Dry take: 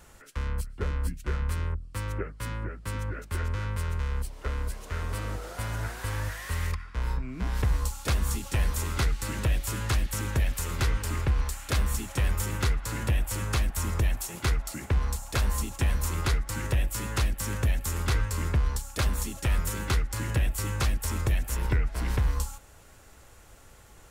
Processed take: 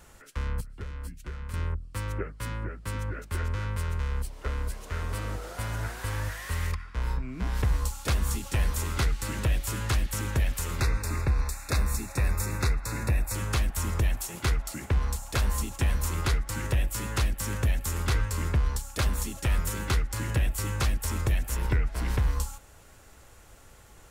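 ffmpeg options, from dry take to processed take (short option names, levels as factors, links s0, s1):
-filter_complex "[0:a]asettb=1/sr,asplit=3[s0][s1][s2];[s0]atrim=end=0.604[s3];[s1]atrim=start=0.6:end=1.54,asetpts=PTS-STARTPTS,afade=t=in:d=0.004:c=qsin,afade=t=out:st=0.936:d=0.004:c=qsin,acrossover=split=150|1400[s4][s5][s6];[s4]acompressor=threshold=0.0158:ratio=4[s7];[s5]acompressor=threshold=0.00398:ratio=4[s8];[s6]acompressor=threshold=0.00316:ratio=4[s9];[s7][s8][s9]amix=inputs=3:normalize=0[s10];[s2]atrim=start=1.536[s11];[s3][s10]acrossfade=d=0.004:c1=hsin:c2=qsin[s12];[s12][s11]acrossfade=d=0.004:c1=qsin:c2=hsin,asettb=1/sr,asplit=3[s13][s14][s15];[s13]atrim=end=10.804[s16];[s14]atrim=start=10.8:end=13.35,asetpts=PTS-STARTPTS,afade=t=in:d=0.004:c=qsin,afade=t=out:st=2.546:d=0.004:c=qsin,asuperstop=centerf=3100:order=8:qfactor=3.5[s17];[s15]atrim=start=13.346[s18];[s16][s17]acrossfade=d=0.004:c1=hsin:c2=qsin[s19];[s19][s18]acrossfade=d=0.004:c1=qsin:c2=hsin"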